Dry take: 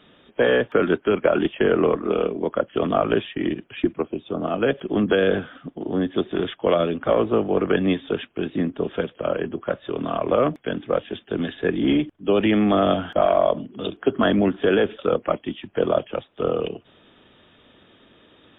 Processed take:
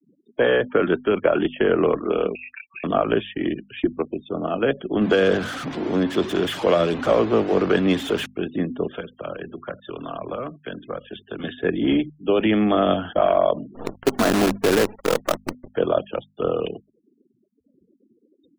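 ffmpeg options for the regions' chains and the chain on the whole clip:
-filter_complex "[0:a]asettb=1/sr,asplit=3[a][b][c];[a]atrim=end=2.354[d];[b]atrim=start=2.35:end=2.84,asetpts=PTS-STARTPTS,afade=t=in:d=0.004:c=qsin,afade=t=out:st=0.486:d=0.004:c=qsin,acompressor=threshold=-38dB:ratio=5:attack=3.2:release=140:knee=1:detection=peak,aecho=1:1:5.2:0.64,atrim=end_sample=21609,lowpass=f=2.5k:t=q:w=0.5098,lowpass=f=2.5k:t=q:w=0.6013,lowpass=f=2.5k:t=q:w=0.9,lowpass=f=2.5k:t=q:w=2.563,afreqshift=-2900[e];[c]atrim=start=2.836[f];[d][e]acrossfade=d=0.004:c1=hsin:c2=qsin[g];[g][f]acrossfade=d=0.004:c1=qsin:c2=hsin,asettb=1/sr,asplit=3[h][i][j];[h]atrim=end=5.014[k];[i]atrim=start=5.01:end=8.26,asetpts=PTS-STARTPTS,afade=t=in:d=0.004:c=qsin,afade=t=out:st=3.246:d=0.004:c=qsin,aeval=exprs='val(0)+0.5*0.0501*sgn(val(0))':c=same,highpass=43[l];[j]atrim=start=8.256[m];[k][l]acrossfade=d=0.004:c1=hsin:c2=qsin[n];[n][m]acrossfade=d=0.004:c1=qsin:c2=hsin,asettb=1/sr,asplit=3[o][p][q];[o]atrim=end=8.884[r];[p]atrim=start=8.88:end=11.44,asetpts=PTS-STARTPTS,afade=t=in:d=0.004:c=qsin,afade=t=out:st=2.556:d=0.004:c=qsin,acrossover=split=110|230|790[s][t][u][v];[s]acompressor=threshold=-50dB:ratio=3[w];[t]acompressor=threshold=-42dB:ratio=3[x];[u]acompressor=threshold=-36dB:ratio=3[y];[v]acompressor=threshold=-35dB:ratio=3[z];[w][x][y][z]amix=inputs=4:normalize=0,aecho=1:1:81:0.0794,atrim=end_sample=112896[aa];[q]atrim=start=11.436[ab];[r][aa]acrossfade=d=0.004:c1=hsin:c2=qsin[ac];[ac][ab]acrossfade=d=0.004:c1=qsin:c2=hsin,asettb=1/sr,asplit=3[ad][ae][af];[ad]atrim=end=13.754[ag];[ae]atrim=start=13.75:end=15.73,asetpts=PTS-STARTPTS,afade=t=in:d=0.004:c=qsin,afade=t=out:st=1.976:d=0.004:c=qsin,lowpass=1.6k,acrusher=bits=4:dc=4:mix=0:aa=0.000001[ah];[af]atrim=start=15.726[ai];[ag][ah]acrossfade=d=0.004:c1=hsin:c2=qsin[aj];[aj][ai]acrossfade=d=0.004:c1=qsin:c2=hsin,afftfilt=real='re*gte(hypot(re,im),0.01)':imag='im*gte(hypot(re,im),0.01)':win_size=1024:overlap=0.75,bandreject=f=50:t=h:w=6,bandreject=f=100:t=h:w=6,bandreject=f=150:t=h:w=6,bandreject=f=200:t=h:w=6,bandreject=f=250:t=h:w=6"

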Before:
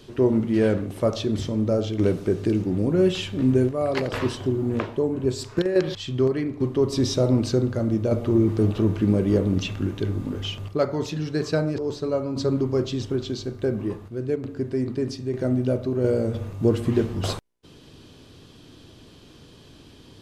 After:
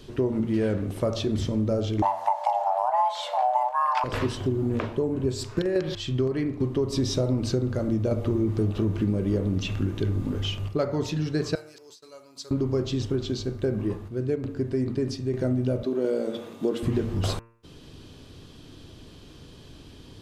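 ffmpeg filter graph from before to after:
-filter_complex "[0:a]asettb=1/sr,asplit=3[a][b][c];[a]atrim=end=2.024[d];[b]atrim=start=2.02:end=4.04,asetpts=PTS-STARTPTS,afade=t=in:d=0.004:c=qsin,afade=t=out:st=2.016:d=0.004:c=qsin,equalizer=f=500:w=0.66:g=8.5,afreqshift=490[e];[c]atrim=start=4.036[f];[d][e]acrossfade=d=0.004:c1=hsin:c2=qsin[g];[g][f]acrossfade=d=0.004:c1=qsin:c2=hsin,asettb=1/sr,asplit=3[h][i][j];[h]atrim=end=11.554[k];[i]atrim=start=11.55:end=12.51,asetpts=PTS-STARTPTS,afade=t=in:d=0.004:c=qsin,afade=t=out:st=0.956:d=0.004:c=qsin,agate=range=-33dB:threshold=-30dB:ratio=3:release=100:detection=peak,aderivative[l];[j]atrim=start=12.506[m];[k][l]acrossfade=d=0.004:c1=hsin:c2=qsin[n];[n][m]acrossfade=d=0.004:c1=qsin:c2=hsin,asettb=1/sr,asplit=3[o][p][q];[o]atrim=end=15.834[r];[p]atrim=start=15.83:end=16.83,asetpts=PTS-STARTPTS,afade=t=in:d=0.004:c=qsin,afade=t=out:st=0.996:d=0.004:c=qsin,highpass=f=220:w=0.5412,highpass=f=220:w=1.3066,equalizer=f=3.5k:w=5.1:g=8.5[s];[q]atrim=start=16.826[t];[r][s]acrossfade=d=0.004:c1=hsin:c2=qsin[u];[u][t]acrossfade=d=0.004:c1=qsin:c2=hsin,lowshelf=f=79:g=8,bandreject=f=114.9:t=h:w=4,bandreject=f=229.8:t=h:w=4,bandreject=f=344.7:t=h:w=4,bandreject=f=459.6:t=h:w=4,bandreject=f=574.5:t=h:w=4,bandreject=f=689.4:t=h:w=4,bandreject=f=804.3:t=h:w=4,bandreject=f=919.2:t=h:w=4,bandreject=f=1.0341k:t=h:w=4,bandreject=f=1.149k:t=h:w=4,bandreject=f=1.2639k:t=h:w=4,bandreject=f=1.3788k:t=h:w=4,bandreject=f=1.4937k:t=h:w=4,bandreject=f=1.6086k:t=h:w=4,bandreject=f=1.7235k:t=h:w=4,bandreject=f=1.8384k:t=h:w=4,bandreject=f=1.9533k:t=h:w=4,bandreject=f=2.0682k:t=h:w=4,bandreject=f=2.1831k:t=h:w=4,bandreject=f=2.298k:t=h:w=4,bandreject=f=2.4129k:t=h:w=4,bandreject=f=2.5278k:t=h:w=4,bandreject=f=2.6427k:t=h:w=4,bandreject=f=2.7576k:t=h:w=4,bandreject=f=2.8725k:t=h:w=4,acompressor=threshold=-21dB:ratio=6"

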